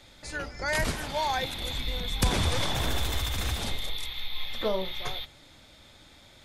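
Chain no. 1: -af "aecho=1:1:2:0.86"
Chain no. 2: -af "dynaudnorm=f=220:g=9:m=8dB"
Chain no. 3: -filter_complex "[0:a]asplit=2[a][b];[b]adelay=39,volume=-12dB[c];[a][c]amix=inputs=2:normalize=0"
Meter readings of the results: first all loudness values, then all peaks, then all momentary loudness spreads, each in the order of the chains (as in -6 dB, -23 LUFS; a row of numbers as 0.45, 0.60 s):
-27.0, -23.0, -30.0 LUFS; -9.0, -6.0, -14.0 dBFS; 9, 11, 9 LU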